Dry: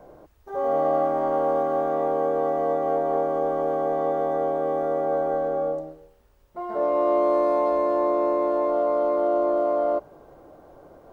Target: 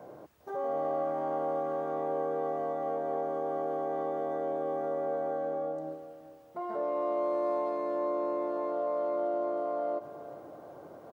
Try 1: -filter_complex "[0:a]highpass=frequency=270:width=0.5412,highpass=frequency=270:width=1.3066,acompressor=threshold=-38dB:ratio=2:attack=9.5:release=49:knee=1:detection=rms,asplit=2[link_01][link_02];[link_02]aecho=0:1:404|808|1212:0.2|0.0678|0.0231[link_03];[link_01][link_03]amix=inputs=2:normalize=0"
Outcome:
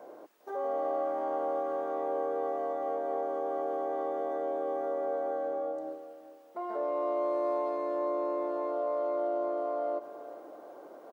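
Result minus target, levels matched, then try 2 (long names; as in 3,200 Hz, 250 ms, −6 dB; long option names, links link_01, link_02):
125 Hz band −17.0 dB
-filter_complex "[0:a]highpass=frequency=100:width=0.5412,highpass=frequency=100:width=1.3066,acompressor=threshold=-38dB:ratio=2:attack=9.5:release=49:knee=1:detection=rms,asplit=2[link_01][link_02];[link_02]aecho=0:1:404|808|1212:0.2|0.0678|0.0231[link_03];[link_01][link_03]amix=inputs=2:normalize=0"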